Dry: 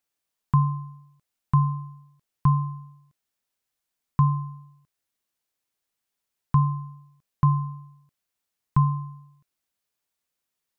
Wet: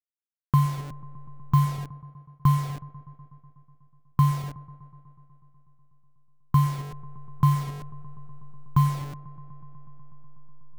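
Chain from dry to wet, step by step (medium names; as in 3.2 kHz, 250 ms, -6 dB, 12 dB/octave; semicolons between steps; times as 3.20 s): send-on-delta sampling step -33 dBFS; feedback echo behind a low-pass 123 ms, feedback 84%, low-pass 1.1 kHz, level -19 dB; expander -41 dBFS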